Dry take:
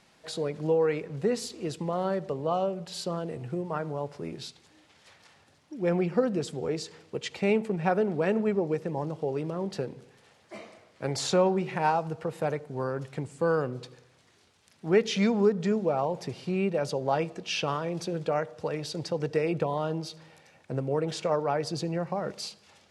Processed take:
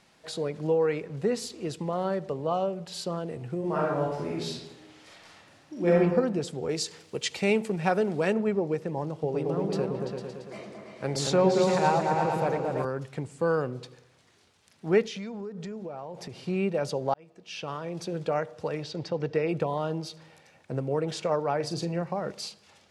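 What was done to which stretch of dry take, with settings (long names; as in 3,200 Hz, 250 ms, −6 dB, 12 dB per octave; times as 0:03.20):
0:03.59–0:05.98: thrown reverb, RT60 1 s, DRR −4.5 dB
0:06.69–0:08.33: high-shelf EQ 3,400 Hz +11 dB
0:09.12–0:12.85: echo whose low-pass opens from repeat to repeat 113 ms, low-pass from 400 Hz, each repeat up 2 octaves, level 0 dB
0:15.02–0:16.42: downward compressor, threshold −35 dBFS
0:17.14–0:18.23: fade in
0:18.83–0:19.49: low-pass filter 4,600 Hz
0:21.56–0:22.02: double-tracking delay 41 ms −9.5 dB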